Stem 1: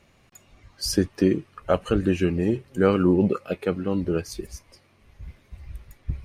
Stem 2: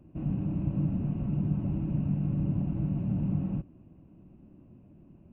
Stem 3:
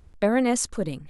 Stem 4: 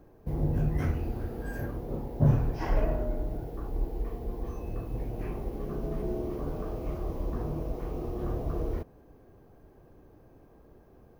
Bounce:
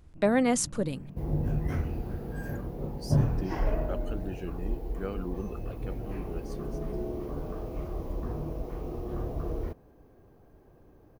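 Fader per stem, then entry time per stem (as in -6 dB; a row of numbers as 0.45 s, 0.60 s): -17.0 dB, -14.5 dB, -2.5 dB, -1.5 dB; 2.20 s, 0.00 s, 0.00 s, 0.90 s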